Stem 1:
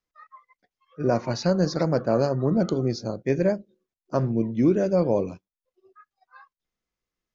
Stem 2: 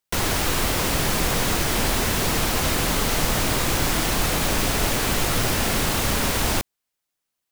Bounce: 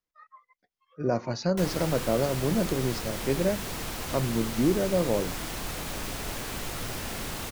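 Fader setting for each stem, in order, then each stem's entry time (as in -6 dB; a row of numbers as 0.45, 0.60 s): -4.0, -12.5 dB; 0.00, 1.45 s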